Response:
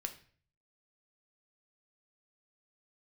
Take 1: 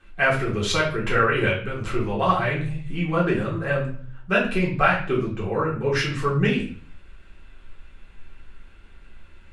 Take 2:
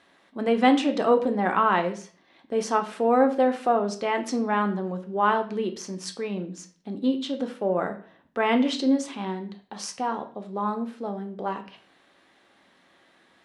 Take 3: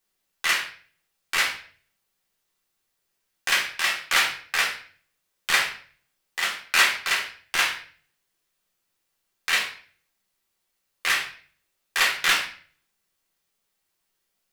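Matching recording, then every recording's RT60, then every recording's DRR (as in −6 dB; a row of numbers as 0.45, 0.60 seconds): 2; 0.45, 0.45, 0.45 seconds; −6.5, 5.5, −1.5 decibels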